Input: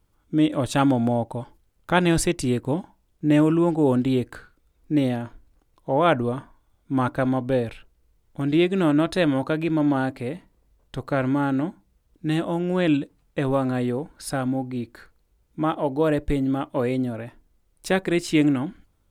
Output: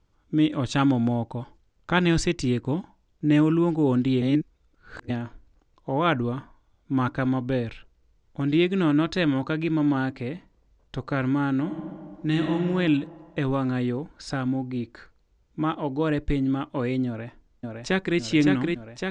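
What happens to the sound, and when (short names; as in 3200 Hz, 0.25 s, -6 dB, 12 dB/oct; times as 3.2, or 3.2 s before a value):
4.22–5.1 reverse
11.61–12.55 reverb throw, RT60 1.9 s, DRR 2.5 dB
17.07–18.18 echo throw 0.56 s, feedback 75%, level -3.5 dB
whole clip: steep low-pass 7000 Hz 36 dB/oct; dynamic EQ 620 Hz, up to -8 dB, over -37 dBFS, Q 1.4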